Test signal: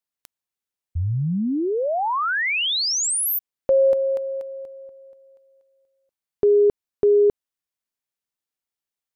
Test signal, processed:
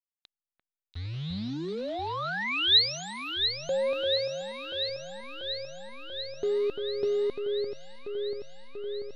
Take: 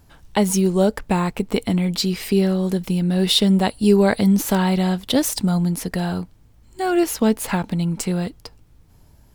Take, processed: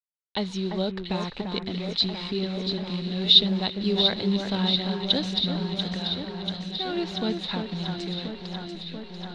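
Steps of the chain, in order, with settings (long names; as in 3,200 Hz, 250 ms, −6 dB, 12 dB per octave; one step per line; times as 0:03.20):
hold until the input has moved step −31.5 dBFS
transistor ladder low-pass 4,100 Hz, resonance 80%
delay that swaps between a low-pass and a high-pass 344 ms, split 2,100 Hz, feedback 86%, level −6 dB
level +1 dB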